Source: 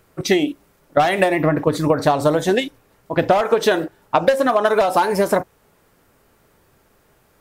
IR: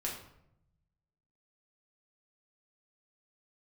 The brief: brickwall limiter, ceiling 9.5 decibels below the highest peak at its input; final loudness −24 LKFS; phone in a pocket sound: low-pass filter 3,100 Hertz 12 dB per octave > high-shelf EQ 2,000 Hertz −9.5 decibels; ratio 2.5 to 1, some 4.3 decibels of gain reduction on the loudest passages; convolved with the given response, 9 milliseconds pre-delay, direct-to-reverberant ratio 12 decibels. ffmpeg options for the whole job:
-filter_complex "[0:a]acompressor=threshold=-17dB:ratio=2.5,alimiter=limit=-14dB:level=0:latency=1,asplit=2[link_01][link_02];[1:a]atrim=start_sample=2205,adelay=9[link_03];[link_02][link_03]afir=irnorm=-1:irlink=0,volume=-14.5dB[link_04];[link_01][link_04]amix=inputs=2:normalize=0,lowpass=3100,highshelf=frequency=2000:gain=-9.5,volume=1dB"

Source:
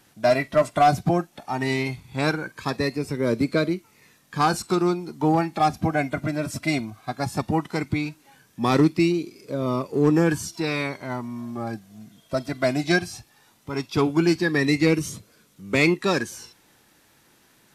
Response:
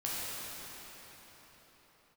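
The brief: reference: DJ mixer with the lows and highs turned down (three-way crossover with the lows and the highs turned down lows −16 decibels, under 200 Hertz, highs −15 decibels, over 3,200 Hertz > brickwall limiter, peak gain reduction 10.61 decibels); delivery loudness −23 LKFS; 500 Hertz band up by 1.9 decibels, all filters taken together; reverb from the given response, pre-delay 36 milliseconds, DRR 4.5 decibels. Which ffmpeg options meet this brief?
-filter_complex "[0:a]equalizer=frequency=500:width_type=o:gain=3,asplit=2[link_01][link_02];[1:a]atrim=start_sample=2205,adelay=36[link_03];[link_02][link_03]afir=irnorm=-1:irlink=0,volume=-10.5dB[link_04];[link_01][link_04]amix=inputs=2:normalize=0,acrossover=split=200 3200:gain=0.158 1 0.178[link_05][link_06][link_07];[link_05][link_06][link_07]amix=inputs=3:normalize=0,volume=3.5dB,alimiter=limit=-12.5dB:level=0:latency=1"

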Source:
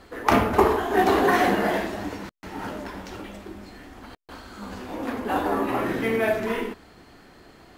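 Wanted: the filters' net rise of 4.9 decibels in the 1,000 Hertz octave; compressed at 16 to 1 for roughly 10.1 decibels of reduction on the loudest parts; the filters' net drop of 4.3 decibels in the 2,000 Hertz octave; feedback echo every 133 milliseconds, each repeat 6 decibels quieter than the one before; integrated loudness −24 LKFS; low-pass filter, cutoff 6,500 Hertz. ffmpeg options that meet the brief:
ffmpeg -i in.wav -af "lowpass=6500,equalizer=frequency=1000:width_type=o:gain=8.5,equalizer=frequency=2000:width_type=o:gain=-9,acompressor=threshold=-20dB:ratio=16,aecho=1:1:133|266|399|532|665|798:0.501|0.251|0.125|0.0626|0.0313|0.0157,volume=2dB" out.wav

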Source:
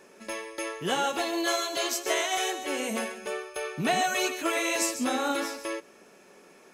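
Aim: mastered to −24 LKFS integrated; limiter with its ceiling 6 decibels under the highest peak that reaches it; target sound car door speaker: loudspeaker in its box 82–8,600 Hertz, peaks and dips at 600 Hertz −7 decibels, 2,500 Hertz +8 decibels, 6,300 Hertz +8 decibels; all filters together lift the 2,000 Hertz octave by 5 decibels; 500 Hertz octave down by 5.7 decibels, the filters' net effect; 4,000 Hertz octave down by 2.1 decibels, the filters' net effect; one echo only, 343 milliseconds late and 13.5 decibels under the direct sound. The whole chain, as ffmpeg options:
ffmpeg -i in.wav -af "equalizer=frequency=500:width_type=o:gain=-4.5,equalizer=frequency=2000:width_type=o:gain=5,equalizer=frequency=4000:width_type=o:gain=-8.5,alimiter=limit=-20dB:level=0:latency=1,highpass=82,equalizer=frequency=600:width_type=q:width=4:gain=-7,equalizer=frequency=2500:width_type=q:width=4:gain=8,equalizer=frequency=6300:width_type=q:width=4:gain=8,lowpass=frequency=8600:width=0.5412,lowpass=frequency=8600:width=1.3066,aecho=1:1:343:0.211,volume=5dB" out.wav

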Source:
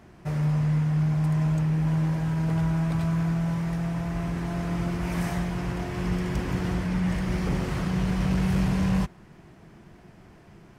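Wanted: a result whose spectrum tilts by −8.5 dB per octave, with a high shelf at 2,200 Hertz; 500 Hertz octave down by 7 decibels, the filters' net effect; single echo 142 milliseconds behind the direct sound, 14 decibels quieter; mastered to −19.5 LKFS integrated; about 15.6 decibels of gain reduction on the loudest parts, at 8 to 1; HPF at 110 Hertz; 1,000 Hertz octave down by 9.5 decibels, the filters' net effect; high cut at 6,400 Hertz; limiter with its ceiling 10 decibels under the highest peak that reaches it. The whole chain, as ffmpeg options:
ffmpeg -i in.wav -af "highpass=110,lowpass=6400,equalizer=frequency=500:width_type=o:gain=-7.5,equalizer=frequency=1000:width_type=o:gain=-8.5,highshelf=frequency=2200:gain=-6.5,acompressor=threshold=-40dB:ratio=8,alimiter=level_in=17.5dB:limit=-24dB:level=0:latency=1,volume=-17.5dB,aecho=1:1:142:0.2,volume=28.5dB" out.wav

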